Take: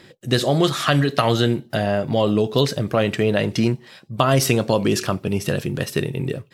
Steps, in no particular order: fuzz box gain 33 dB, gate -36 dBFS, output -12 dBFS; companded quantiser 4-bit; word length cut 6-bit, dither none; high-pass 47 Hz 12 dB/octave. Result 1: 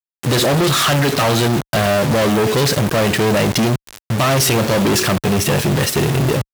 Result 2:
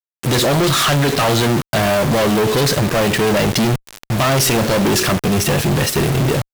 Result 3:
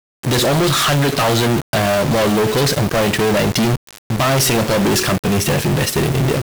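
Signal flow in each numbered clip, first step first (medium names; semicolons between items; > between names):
companded quantiser > word length cut > fuzz box > high-pass; companded quantiser > high-pass > word length cut > fuzz box; companded quantiser > high-pass > fuzz box > word length cut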